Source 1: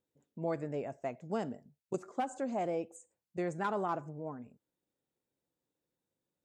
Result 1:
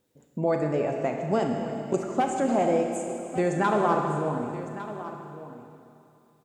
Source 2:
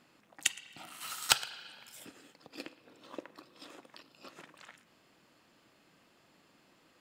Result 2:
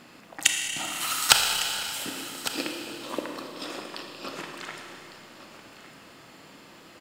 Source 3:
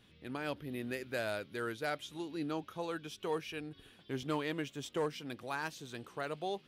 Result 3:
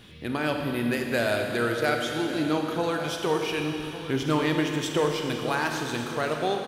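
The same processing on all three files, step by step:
in parallel at +2 dB: compression, threshold -43 dBFS; on the sum: delay 1155 ms -14 dB; Schroeder reverb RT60 2.7 s, combs from 26 ms, DRR 2.5 dB; normalise loudness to -27 LUFS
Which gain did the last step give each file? +7.0 dB, +7.0 dB, +7.0 dB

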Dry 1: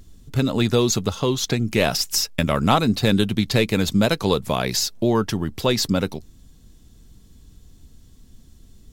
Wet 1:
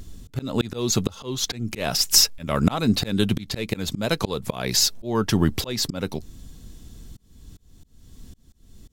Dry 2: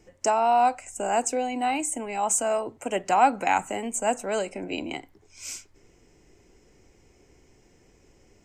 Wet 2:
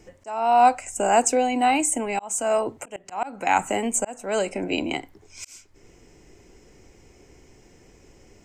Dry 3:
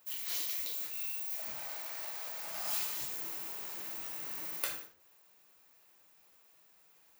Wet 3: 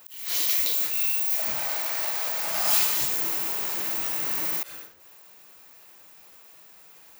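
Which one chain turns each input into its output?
slow attack 438 ms; normalise loudness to -23 LUFS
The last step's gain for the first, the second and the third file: +6.5 dB, +6.0 dB, +13.5 dB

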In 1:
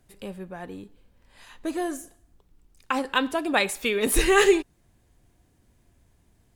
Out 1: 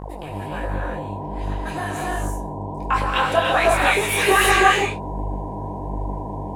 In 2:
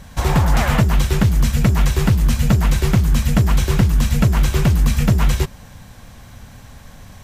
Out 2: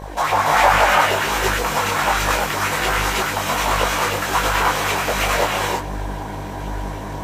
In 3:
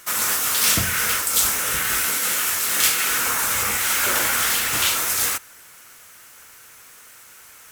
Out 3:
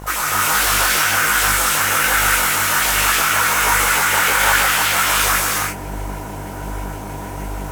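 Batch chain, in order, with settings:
flange 0.49 Hz, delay 1.9 ms, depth 6.8 ms, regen -54%; in parallel at -11 dB: sine folder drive 6 dB, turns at -5 dBFS; on the sum: LFO high-pass saw up 6.3 Hz 460–3000 Hz; mains buzz 50 Hz, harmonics 21, -34 dBFS -4 dB/octave; peak limiter -11.5 dBFS; peaking EQ 870 Hz +6.5 dB 2 oct; gated-style reverb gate 360 ms rising, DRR -3 dB; detune thickener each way 46 cents; trim +2 dB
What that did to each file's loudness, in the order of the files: +2.5 LU, -1.5 LU, +4.0 LU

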